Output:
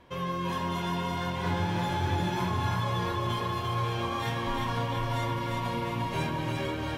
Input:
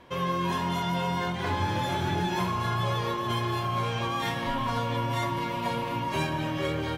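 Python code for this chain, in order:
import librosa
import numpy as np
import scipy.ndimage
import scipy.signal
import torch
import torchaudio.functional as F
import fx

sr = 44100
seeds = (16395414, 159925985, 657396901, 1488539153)

p1 = fx.low_shelf(x, sr, hz=100.0, db=6.5)
p2 = p1 + fx.echo_split(p1, sr, split_hz=370.0, low_ms=516, high_ms=347, feedback_pct=52, wet_db=-3.5, dry=0)
y = p2 * 10.0 ** (-4.5 / 20.0)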